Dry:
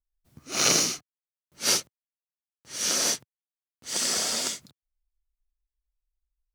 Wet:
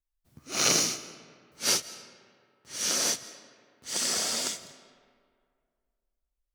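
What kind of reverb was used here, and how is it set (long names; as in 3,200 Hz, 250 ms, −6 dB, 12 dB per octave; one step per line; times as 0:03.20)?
comb and all-pass reverb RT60 2.1 s, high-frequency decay 0.6×, pre-delay 120 ms, DRR 15.5 dB
level −2 dB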